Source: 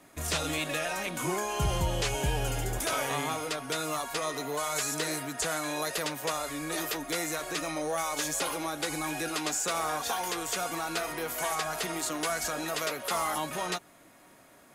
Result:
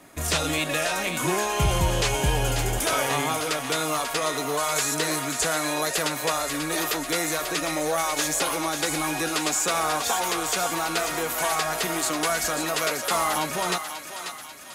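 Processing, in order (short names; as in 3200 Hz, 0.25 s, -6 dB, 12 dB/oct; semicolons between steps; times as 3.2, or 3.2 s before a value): thinning echo 0.54 s, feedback 56%, high-pass 970 Hz, level -7 dB; gain +6 dB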